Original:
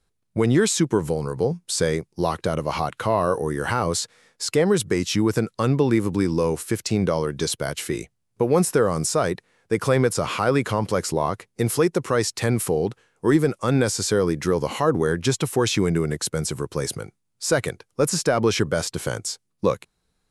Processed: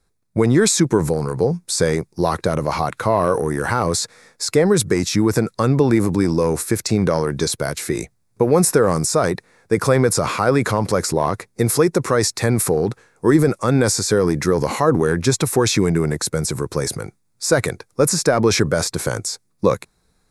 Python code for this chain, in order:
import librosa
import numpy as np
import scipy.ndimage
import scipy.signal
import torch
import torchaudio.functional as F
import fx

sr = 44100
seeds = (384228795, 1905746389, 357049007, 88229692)

y = fx.peak_eq(x, sr, hz=3000.0, db=-14.0, octaves=0.26)
y = fx.transient(y, sr, attack_db=2, sustain_db=6)
y = y * librosa.db_to_amplitude(3.0)